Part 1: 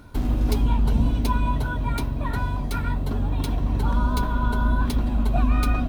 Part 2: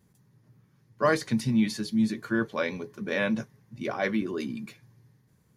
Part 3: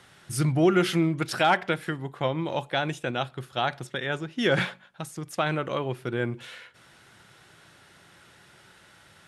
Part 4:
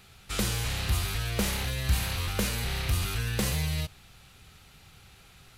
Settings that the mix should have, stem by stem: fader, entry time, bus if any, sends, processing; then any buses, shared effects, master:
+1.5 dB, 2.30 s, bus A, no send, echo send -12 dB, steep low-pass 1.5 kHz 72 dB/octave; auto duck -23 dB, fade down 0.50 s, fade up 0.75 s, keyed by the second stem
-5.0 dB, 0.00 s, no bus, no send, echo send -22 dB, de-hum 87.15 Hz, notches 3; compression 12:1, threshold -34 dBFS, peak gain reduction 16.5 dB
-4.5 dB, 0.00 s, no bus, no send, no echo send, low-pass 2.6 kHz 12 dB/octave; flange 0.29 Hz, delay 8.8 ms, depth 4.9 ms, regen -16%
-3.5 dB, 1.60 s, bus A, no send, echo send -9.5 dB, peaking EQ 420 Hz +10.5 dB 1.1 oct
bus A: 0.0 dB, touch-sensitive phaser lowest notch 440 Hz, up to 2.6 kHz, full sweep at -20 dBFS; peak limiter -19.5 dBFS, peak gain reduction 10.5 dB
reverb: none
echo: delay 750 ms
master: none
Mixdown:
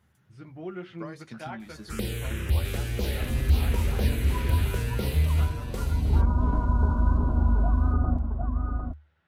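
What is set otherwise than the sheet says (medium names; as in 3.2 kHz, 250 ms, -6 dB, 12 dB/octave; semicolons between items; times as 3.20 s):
stem 3 -4.5 dB -> -14.5 dB; master: extra peaking EQ 75 Hz +15 dB 0.31 oct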